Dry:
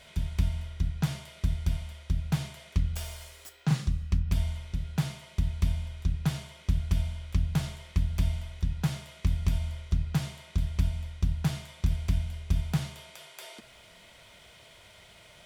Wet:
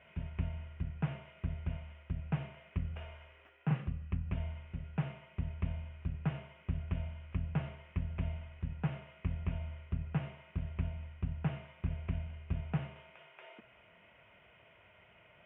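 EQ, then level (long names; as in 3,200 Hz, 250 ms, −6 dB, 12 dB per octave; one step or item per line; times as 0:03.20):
elliptic low-pass filter 2,800 Hz, stop band 40 dB
dynamic equaliser 510 Hz, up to +6 dB, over −51 dBFS, Q 1.3
high-pass filter 69 Hz
−5.5 dB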